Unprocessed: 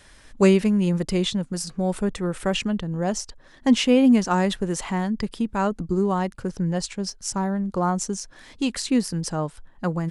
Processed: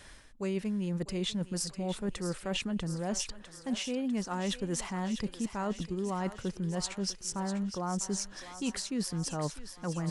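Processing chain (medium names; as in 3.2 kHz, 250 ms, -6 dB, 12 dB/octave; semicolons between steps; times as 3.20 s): reverse; compression 12:1, threshold -29 dBFS, peak gain reduction 18 dB; reverse; thinning echo 649 ms, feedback 71%, high-pass 720 Hz, level -10 dB; trim -1 dB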